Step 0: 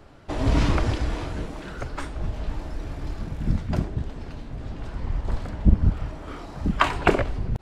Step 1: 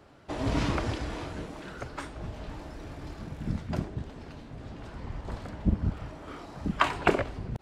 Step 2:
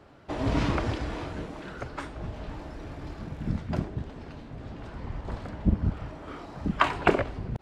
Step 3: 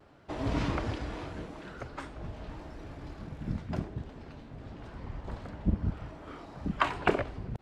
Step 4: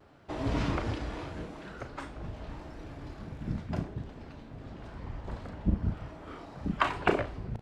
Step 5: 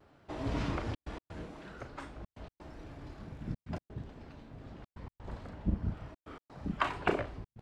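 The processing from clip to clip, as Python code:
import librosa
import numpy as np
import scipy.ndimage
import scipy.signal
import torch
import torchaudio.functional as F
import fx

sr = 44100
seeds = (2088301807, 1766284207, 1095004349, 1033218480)

y1 = fx.highpass(x, sr, hz=110.0, slope=6)
y1 = F.gain(torch.from_numpy(y1), -4.0).numpy()
y2 = fx.high_shelf(y1, sr, hz=5800.0, db=-8.5)
y2 = F.gain(torch.from_numpy(y2), 2.0).numpy()
y3 = fx.vibrato(y2, sr, rate_hz=0.87, depth_cents=34.0)
y3 = F.gain(torch.from_numpy(y3), -4.5).numpy()
y4 = fx.doubler(y3, sr, ms=36.0, db=-10.0)
y5 = fx.step_gate(y4, sr, bpm=127, pattern='xxxxxxxx.x.', floor_db=-60.0, edge_ms=4.5)
y5 = F.gain(torch.from_numpy(y5), -4.0).numpy()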